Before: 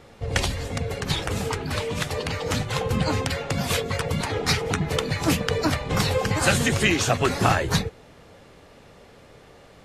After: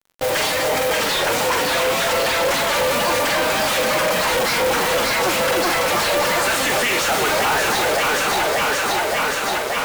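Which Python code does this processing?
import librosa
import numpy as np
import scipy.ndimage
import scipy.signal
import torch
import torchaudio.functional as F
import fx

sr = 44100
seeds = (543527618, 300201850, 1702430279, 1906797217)

y = fx.echo_alternate(x, sr, ms=289, hz=910.0, feedback_pct=81, wet_db=-6)
y = fx.pitch_keep_formants(y, sr, semitones=2.0)
y = fx.doubler(y, sr, ms=45.0, db=-11.0)
y = fx.mod_noise(y, sr, seeds[0], snr_db=14)
y = scipy.signal.sosfilt(scipy.signal.butter(2, 590.0, 'highpass', fs=sr, output='sos'), y)
y = fx.fuzz(y, sr, gain_db=47.0, gate_db=-44.0)
y = fx.high_shelf(y, sr, hz=3200.0, db=-7.5)
y = F.gain(torch.from_numpy(y), -2.0).numpy()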